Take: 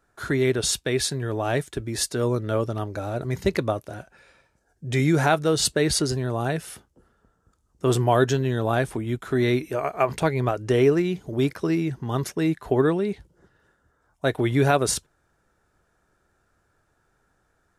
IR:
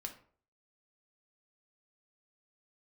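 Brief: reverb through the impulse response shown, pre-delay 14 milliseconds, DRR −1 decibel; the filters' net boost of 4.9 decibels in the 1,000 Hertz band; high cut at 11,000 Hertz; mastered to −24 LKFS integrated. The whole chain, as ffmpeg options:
-filter_complex "[0:a]lowpass=11000,equalizer=frequency=1000:width_type=o:gain=7,asplit=2[link_01][link_02];[1:a]atrim=start_sample=2205,adelay=14[link_03];[link_02][link_03]afir=irnorm=-1:irlink=0,volume=3.5dB[link_04];[link_01][link_04]amix=inputs=2:normalize=0,volume=-4.5dB"

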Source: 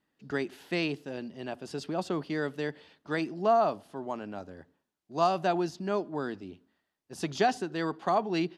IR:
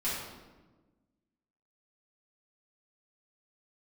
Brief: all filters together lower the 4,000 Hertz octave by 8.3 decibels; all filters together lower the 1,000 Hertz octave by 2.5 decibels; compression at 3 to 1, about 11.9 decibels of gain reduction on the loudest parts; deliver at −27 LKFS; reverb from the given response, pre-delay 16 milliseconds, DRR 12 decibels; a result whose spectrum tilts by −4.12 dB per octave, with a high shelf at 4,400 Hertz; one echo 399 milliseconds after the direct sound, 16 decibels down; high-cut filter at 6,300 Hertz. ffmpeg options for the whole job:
-filter_complex "[0:a]lowpass=6300,equalizer=frequency=1000:width_type=o:gain=-3.5,equalizer=frequency=4000:width_type=o:gain=-7,highshelf=frequency=4400:gain=-6,acompressor=threshold=-38dB:ratio=3,aecho=1:1:399:0.158,asplit=2[link_01][link_02];[1:a]atrim=start_sample=2205,adelay=16[link_03];[link_02][link_03]afir=irnorm=-1:irlink=0,volume=-18.5dB[link_04];[link_01][link_04]amix=inputs=2:normalize=0,volume=14dB"

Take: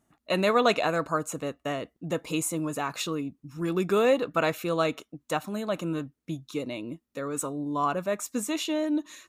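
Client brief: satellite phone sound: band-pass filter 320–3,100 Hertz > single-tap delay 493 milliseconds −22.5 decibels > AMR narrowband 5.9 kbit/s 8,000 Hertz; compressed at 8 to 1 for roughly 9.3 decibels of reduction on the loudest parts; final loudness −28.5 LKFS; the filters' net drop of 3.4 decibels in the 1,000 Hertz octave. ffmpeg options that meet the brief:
ffmpeg -i in.wav -af "equalizer=frequency=1000:width_type=o:gain=-4.5,acompressor=threshold=-29dB:ratio=8,highpass=320,lowpass=3100,aecho=1:1:493:0.075,volume=10dB" -ar 8000 -c:a libopencore_amrnb -b:a 5900 out.amr

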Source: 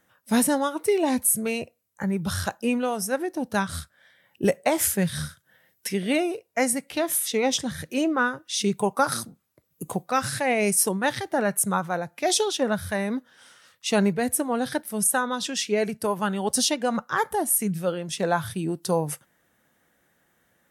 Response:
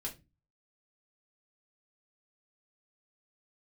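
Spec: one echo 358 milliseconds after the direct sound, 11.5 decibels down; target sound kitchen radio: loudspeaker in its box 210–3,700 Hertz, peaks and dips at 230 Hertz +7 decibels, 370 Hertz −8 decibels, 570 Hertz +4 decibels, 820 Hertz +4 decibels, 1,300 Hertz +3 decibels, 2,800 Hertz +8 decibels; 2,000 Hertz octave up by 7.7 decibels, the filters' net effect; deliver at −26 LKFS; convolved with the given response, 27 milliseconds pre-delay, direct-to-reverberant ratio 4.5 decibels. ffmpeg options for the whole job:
-filter_complex "[0:a]equalizer=frequency=2000:width_type=o:gain=7.5,aecho=1:1:358:0.266,asplit=2[link_01][link_02];[1:a]atrim=start_sample=2205,adelay=27[link_03];[link_02][link_03]afir=irnorm=-1:irlink=0,volume=-4dB[link_04];[link_01][link_04]amix=inputs=2:normalize=0,highpass=210,equalizer=frequency=230:width_type=q:width=4:gain=7,equalizer=frequency=370:width_type=q:width=4:gain=-8,equalizer=frequency=570:width_type=q:width=4:gain=4,equalizer=frequency=820:width_type=q:width=4:gain=4,equalizer=frequency=1300:width_type=q:width=4:gain=3,equalizer=frequency=2800:width_type=q:width=4:gain=8,lowpass=frequency=3700:width=0.5412,lowpass=frequency=3700:width=1.3066,volume=-4.5dB"

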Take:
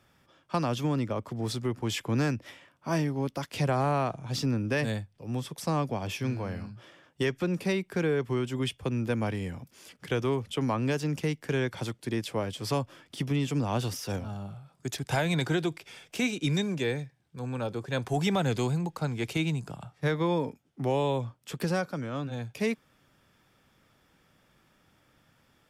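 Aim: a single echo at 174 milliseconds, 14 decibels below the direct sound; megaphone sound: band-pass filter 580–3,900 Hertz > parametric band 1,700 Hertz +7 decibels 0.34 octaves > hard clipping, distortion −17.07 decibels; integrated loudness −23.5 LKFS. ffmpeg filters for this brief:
ffmpeg -i in.wav -af "highpass=580,lowpass=3900,equalizer=frequency=1700:width_type=o:width=0.34:gain=7,aecho=1:1:174:0.2,asoftclip=type=hard:threshold=-24.5dB,volume=12.5dB" out.wav

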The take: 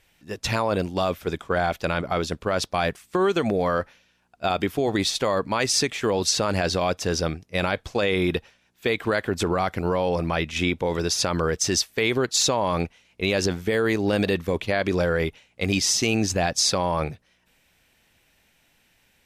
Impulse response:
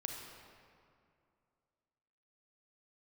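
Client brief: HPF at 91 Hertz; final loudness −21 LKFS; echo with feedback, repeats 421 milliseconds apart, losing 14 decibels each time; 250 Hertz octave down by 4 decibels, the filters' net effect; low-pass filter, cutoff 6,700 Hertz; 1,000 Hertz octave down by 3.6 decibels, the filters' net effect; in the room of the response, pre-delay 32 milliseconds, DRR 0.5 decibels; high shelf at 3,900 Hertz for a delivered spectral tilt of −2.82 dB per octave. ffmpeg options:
-filter_complex "[0:a]highpass=91,lowpass=6700,equalizer=frequency=250:width_type=o:gain=-5.5,equalizer=frequency=1000:width_type=o:gain=-5,highshelf=frequency=3900:gain=5,aecho=1:1:421|842:0.2|0.0399,asplit=2[link_01][link_02];[1:a]atrim=start_sample=2205,adelay=32[link_03];[link_02][link_03]afir=irnorm=-1:irlink=0,volume=0dB[link_04];[link_01][link_04]amix=inputs=2:normalize=0,volume=1.5dB"

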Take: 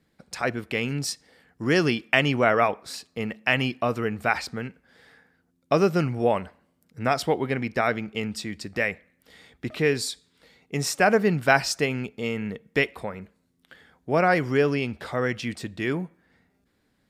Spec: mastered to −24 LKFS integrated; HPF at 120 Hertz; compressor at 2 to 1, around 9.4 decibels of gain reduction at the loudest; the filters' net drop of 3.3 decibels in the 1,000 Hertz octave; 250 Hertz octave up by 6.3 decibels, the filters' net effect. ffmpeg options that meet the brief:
ffmpeg -i in.wav -af "highpass=120,equalizer=frequency=250:width_type=o:gain=8.5,equalizer=frequency=1000:width_type=o:gain=-6,acompressor=threshold=-31dB:ratio=2,volume=7dB" out.wav

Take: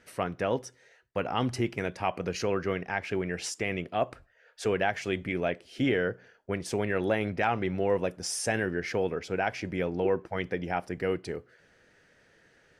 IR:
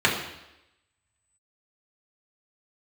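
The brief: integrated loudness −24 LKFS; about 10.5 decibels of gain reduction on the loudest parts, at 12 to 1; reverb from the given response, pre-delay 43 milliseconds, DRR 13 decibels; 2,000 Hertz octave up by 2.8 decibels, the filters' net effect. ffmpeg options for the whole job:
-filter_complex "[0:a]equalizer=frequency=2000:width_type=o:gain=3.5,acompressor=threshold=-32dB:ratio=12,asplit=2[link_01][link_02];[1:a]atrim=start_sample=2205,adelay=43[link_03];[link_02][link_03]afir=irnorm=-1:irlink=0,volume=-31dB[link_04];[link_01][link_04]amix=inputs=2:normalize=0,volume=13.5dB"

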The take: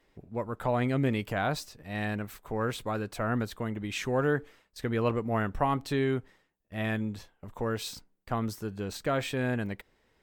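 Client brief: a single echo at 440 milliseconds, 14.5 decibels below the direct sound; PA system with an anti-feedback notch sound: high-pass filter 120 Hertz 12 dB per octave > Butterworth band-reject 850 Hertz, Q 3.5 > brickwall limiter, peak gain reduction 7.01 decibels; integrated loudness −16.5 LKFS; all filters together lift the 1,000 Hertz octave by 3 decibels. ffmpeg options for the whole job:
ffmpeg -i in.wav -af "highpass=120,asuperstop=centerf=850:order=8:qfactor=3.5,equalizer=frequency=1000:width_type=o:gain=7,aecho=1:1:440:0.188,volume=16dB,alimiter=limit=-4.5dB:level=0:latency=1" out.wav

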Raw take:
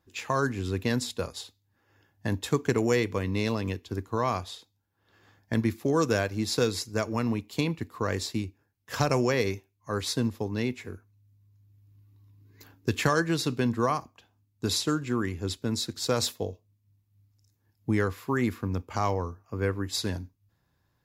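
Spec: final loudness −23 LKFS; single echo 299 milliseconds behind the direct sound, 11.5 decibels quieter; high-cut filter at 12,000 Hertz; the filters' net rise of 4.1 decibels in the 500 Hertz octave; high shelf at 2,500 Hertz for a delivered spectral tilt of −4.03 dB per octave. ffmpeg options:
ffmpeg -i in.wav -af "lowpass=12000,equalizer=frequency=500:width_type=o:gain=4.5,highshelf=frequency=2500:gain=8,aecho=1:1:299:0.266,volume=3dB" out.wav

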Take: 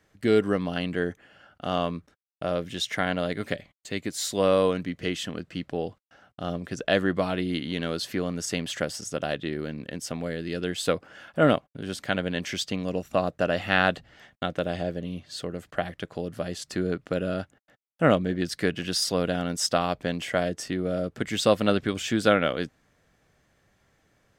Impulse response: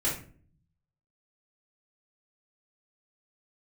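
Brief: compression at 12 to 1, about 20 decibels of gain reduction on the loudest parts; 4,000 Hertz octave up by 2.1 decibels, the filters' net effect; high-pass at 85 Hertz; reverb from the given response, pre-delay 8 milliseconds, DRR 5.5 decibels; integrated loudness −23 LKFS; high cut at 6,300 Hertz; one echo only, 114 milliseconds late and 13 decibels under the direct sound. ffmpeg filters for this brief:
-filter_complex "[0:a]highpass=85,lowpass=6300,equalizer=frequency=4000:width_type=o:gain=3.5,acompressor=threshold=-35dB:ratio=12,aecho=1:1:114:0.224,asplit=2[link_01][link_02];[1:a]atrim=start_sample=2205,adelay=8[link_03];[link_02][link_03]afir=irnorm=-1:irlink=0,volume=-13.5dB[link_04];[link_01][link_04]amix=inputs=2:normalize=0,volume=15.5dB"

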